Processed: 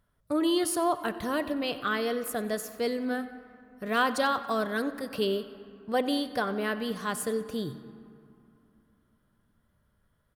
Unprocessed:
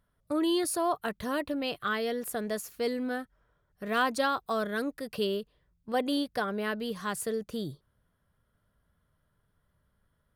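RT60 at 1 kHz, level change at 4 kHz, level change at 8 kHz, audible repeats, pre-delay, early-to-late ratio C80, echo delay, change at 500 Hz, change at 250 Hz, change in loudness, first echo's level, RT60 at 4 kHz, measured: 2.9 s, +1.5 dB, +1.5 dB, 2, 8 ms, 12.5 dB, 93 ms, +2.0 dB, +2.0 dB, +2.0 dB, -18.5 dB, 1.5 s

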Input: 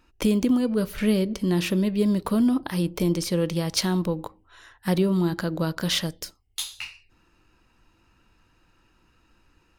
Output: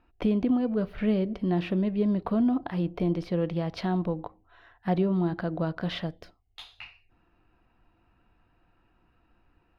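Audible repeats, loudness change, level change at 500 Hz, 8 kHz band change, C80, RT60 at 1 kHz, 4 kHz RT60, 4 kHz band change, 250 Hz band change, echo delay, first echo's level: none, -3.5 dB, -3.0 dB, under -25 dB, none, none, none, -12.5 dB, -3.5 dB, none, none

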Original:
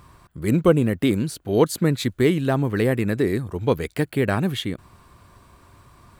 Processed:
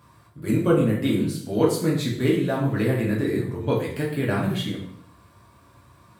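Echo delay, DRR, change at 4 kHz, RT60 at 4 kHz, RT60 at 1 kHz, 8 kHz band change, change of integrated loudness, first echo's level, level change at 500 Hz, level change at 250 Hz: none, -4.0 dB, -2.0 dB, 0.55 s, 0.60 s, -3.0 dB, -1.5 dB, none, -2.5 dB, -1.0 dB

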